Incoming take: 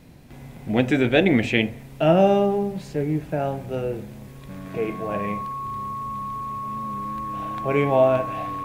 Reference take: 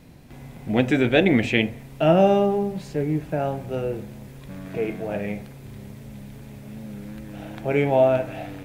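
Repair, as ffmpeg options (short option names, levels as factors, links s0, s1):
-af "bandreject=f=1100:w=30"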